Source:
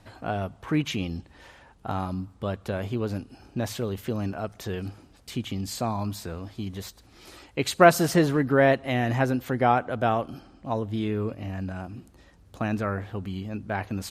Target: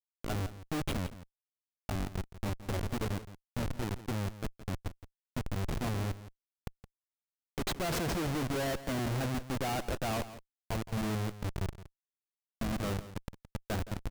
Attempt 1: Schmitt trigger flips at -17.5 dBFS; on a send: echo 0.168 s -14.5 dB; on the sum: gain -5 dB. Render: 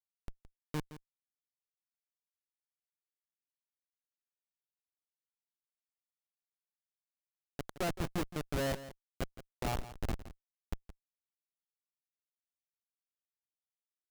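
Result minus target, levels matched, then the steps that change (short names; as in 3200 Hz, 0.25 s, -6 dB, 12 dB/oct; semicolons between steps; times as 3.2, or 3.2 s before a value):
Schmitt trigger: distortion +5 dB
change: Schmitt trigger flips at -27 dBFS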